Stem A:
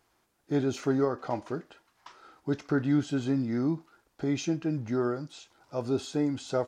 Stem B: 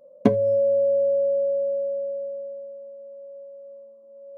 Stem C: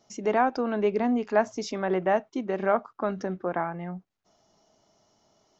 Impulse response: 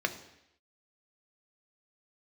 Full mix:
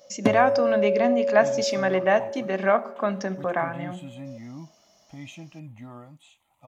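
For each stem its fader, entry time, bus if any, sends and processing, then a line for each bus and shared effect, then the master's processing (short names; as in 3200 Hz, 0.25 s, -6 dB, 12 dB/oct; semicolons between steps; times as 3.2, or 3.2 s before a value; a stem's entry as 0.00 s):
-6.5 dB, 0.90 s, no send, gate with hold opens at -57 dBFS; bell 4500 Hz -10 dB 0.51 oct; fixed phaser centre 1500 Hz, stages 6
-3.0 dB, 0.00 s, no send, dry
-1.5 dB, 0.00 s, send -9.5 dB, dry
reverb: on, RT60 0.80 s, pre-delay 3 ms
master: high shelf 2500 Hz +10 dB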